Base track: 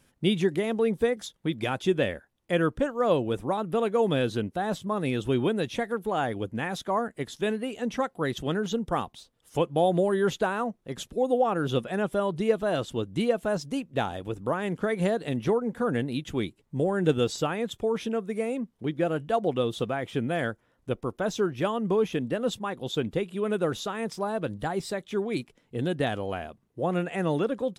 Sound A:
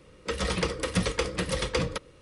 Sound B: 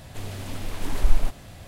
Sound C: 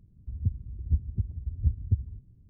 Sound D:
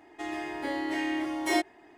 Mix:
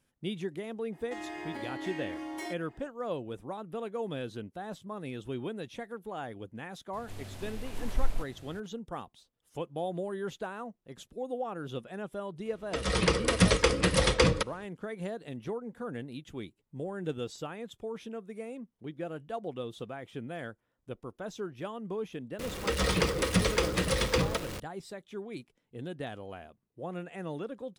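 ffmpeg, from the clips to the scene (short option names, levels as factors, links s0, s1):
-filter_complex "[1:a]asplit=2[s0][s1];[0:a]volume=0.266[s2];[4:a]acompressor=threshold=0.0251:ratio=6:attack=3.2:release=140:knee=1:detection=peak[s3];[2:a]aresample=32000,aresample=44100[s4];[s0]dynaudnorm=f=200:g=5:m=3.76[s5];[s1]aeval=exprs='val(0)+0.5*0.0211*sgn(val(0))':c=same[s6];[s3]atrim=end=1.97,asetpts=PTS-STARTPTS,volume=0.668,afade=t=in:d=0.004:c=hsin,afade=t=out:st=1.966:d=0.004:c=hsin,adelay=920[s7];[s4]atrim=end=1.67,asetpts=PTS-STARTPTS,volume=0.335,afade=t=in:d=0.004:c=hsin,afade=t=out:st=1.666:d=0.004:c=hsin,adelay=6930[s8];[s5]atrim=end=2.21,asetpts=PTS-STARTPTS,volume=0.501,afade=t=in:d=0.004:c=hsin,afade=t=out:st=2.206:d=0.004:c=hsin,adelay=12450[s9];[s6]atrim=end=2.21,asetpts=PTS-STARTPTS,volume=0.891,afade=t=in:d=0.004:c=hsin,afade=t=out:st=2.206:d=0.004:c=hsin,adelay=22390[s10];[s2][s7][s8][s9][s10]amix=inputs=5:normalize=0"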